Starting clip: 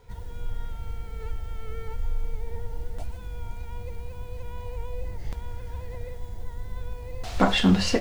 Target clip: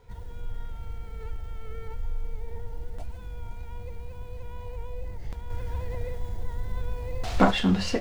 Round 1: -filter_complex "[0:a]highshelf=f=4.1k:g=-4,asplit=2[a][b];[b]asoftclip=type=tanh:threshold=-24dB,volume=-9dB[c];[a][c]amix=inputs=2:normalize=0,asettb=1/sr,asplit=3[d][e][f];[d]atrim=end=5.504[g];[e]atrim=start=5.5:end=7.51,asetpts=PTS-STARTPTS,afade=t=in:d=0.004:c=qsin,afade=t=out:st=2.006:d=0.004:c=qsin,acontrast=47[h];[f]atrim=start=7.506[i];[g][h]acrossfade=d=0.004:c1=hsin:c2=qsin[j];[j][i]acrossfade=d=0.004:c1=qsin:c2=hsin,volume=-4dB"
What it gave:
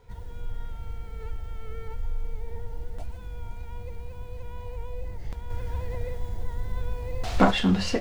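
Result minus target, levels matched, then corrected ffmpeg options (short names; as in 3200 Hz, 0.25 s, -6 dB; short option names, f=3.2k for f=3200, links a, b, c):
soft clip: distortion -4 dB
-filter_complex "[0:a]highshelf=f=4.1k:g=-4,asplit=2[a][b];[b]asoftclip=type=tanh:threshold=-33dB,volume=-9dB[c];[a][c]amix=inputs=2:normalize=0,asettb=1/sr,asplit=3[d][e][f];[d]atrim=end=5.504[g];[e]atrim=start=5.5:end=7.51,asetpts=PTS-STARTPTS,afade=t=in:d=0.004:c=qsin,afade=t=out:st=2.006:d=0.004:c=qsin,acontrast=47[h];[f]atrim=start=7.506[i];[g][h]acrossfade=d=0.004:c1=hsin:c2=qsin[j];[j][i]acrossfade=d=0.004:c1=qsin:c2=hsin,volume=-4dB"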